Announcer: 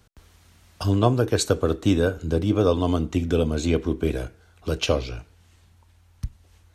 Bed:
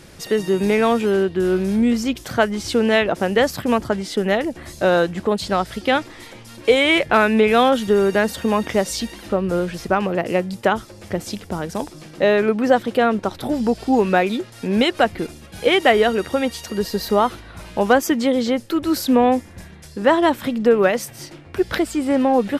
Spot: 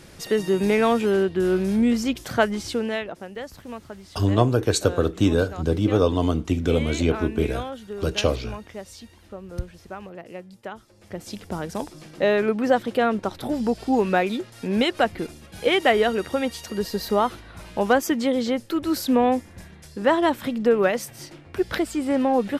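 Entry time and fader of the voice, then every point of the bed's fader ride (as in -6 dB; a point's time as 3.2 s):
3.35 s, +0.5 dB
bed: 2.53 s -2.5 dB
3.3 s -18 dB
10.77 s -18 dB
11.46 s -4 dB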